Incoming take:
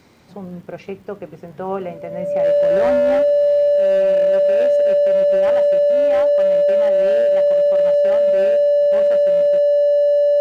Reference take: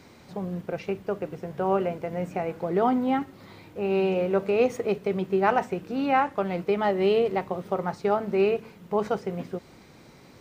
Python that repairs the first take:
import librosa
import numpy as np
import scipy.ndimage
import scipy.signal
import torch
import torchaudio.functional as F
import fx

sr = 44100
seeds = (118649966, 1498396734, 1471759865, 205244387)

y = fx.fix_declip(x, sr, threshold_db=-11.5)
y = fx.fix_declick_ar(y, sr, threshold=6.5)
y = fx.notch(y, sr, hz=580.0, q=30.0)
y = fx.fix_level(y, sr, at_s=3.76, step_db=6.0)